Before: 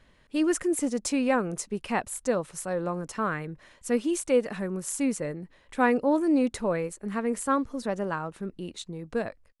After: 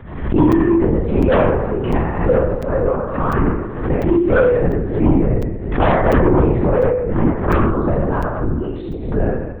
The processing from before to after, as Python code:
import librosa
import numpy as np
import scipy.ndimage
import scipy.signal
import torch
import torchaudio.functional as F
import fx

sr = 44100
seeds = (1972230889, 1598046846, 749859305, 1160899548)

p1 = fx.low_shelf(x, sr, hz=200.0, db=6.5)
p2 = fx.level_steps(p1, sr, step_db=11)
p3 = p1 + F.gain(torch.from_numpy(p2), 0.0).numpy()
p4 = scipy.signal.sosfilt(scipy.signal.butter(2, 1300.0, 'lowpass', fs=sr, output='sos'), p3)
p5 = fx.room_flutter(p4, sr, wall_m=4.5, rt60_s=1.1)
p6 = fx.fold_sine(p5, sr, drive_db=9, ceiling_db=0.0)
p7 = fx.lpc_vocoder(p6, sr, seeds[0], excitation='whisper', order=10)
p8 = fx.buffer_crackle(p7, sr, first_s=0.52, period_s=0.7, block=256, kind='zero')
p9 = fx.pre_swell(p8, sr, db_per_s=68.0)
y = F.gain(torch.from_numpy(p9), -9.0).numpy()